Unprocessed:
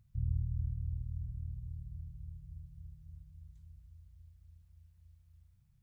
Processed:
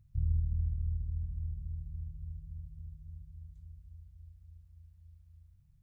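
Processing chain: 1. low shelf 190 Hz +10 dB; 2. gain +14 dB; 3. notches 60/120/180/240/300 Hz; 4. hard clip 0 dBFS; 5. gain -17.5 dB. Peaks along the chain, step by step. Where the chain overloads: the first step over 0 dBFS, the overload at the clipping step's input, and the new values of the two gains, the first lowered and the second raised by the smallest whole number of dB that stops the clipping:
-14.5, -0.5, -3.5, -3.5, -21.0 dBFS; no overload

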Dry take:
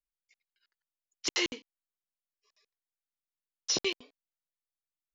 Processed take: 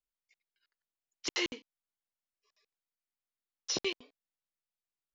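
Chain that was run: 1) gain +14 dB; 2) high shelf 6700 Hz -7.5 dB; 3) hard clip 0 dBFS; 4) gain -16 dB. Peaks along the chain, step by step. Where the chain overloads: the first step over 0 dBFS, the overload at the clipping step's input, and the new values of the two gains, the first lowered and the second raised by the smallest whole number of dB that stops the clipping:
-3.5, -4.5, -4.5, -20.5 dBFS; no overload

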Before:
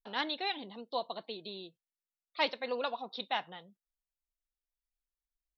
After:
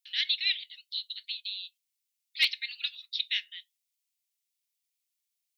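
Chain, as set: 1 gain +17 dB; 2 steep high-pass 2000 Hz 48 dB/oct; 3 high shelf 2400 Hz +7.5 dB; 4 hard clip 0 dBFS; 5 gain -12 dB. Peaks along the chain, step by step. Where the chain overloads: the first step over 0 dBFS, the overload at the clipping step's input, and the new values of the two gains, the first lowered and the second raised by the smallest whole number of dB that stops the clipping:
+0.5, -0.5, +4.5, 0.0, -12.0 dBFS; step 1, 4.5 dB; step 1 +12 dB, step 5 -7 dB

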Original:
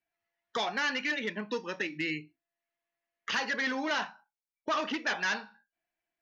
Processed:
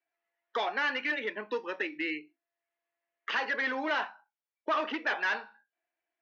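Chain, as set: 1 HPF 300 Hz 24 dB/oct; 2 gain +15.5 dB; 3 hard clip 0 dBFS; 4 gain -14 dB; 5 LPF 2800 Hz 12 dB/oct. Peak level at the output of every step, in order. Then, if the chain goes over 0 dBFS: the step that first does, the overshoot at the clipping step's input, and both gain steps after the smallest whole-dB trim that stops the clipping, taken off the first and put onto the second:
-19.5, -4.0, -4.0, -18.0, -19.0 dBFS; no overload

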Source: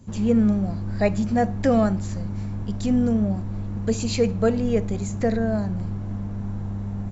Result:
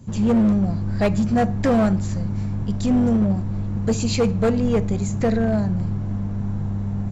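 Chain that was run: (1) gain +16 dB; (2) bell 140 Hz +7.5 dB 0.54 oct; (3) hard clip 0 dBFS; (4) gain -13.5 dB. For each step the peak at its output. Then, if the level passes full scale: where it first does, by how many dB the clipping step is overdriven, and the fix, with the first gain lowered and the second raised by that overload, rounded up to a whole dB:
+8.0, +8.5, 0.0, -13.5 dBFS; step 1, 8.5 dB; step 1 +7 dB, step 4 -4.5 dB

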